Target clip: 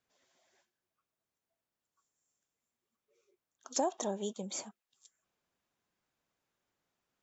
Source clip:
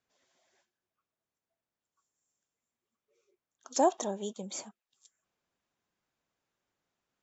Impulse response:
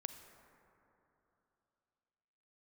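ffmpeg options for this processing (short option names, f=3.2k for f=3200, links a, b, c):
-af "acompressor=threshold=-28dB:ratio=6"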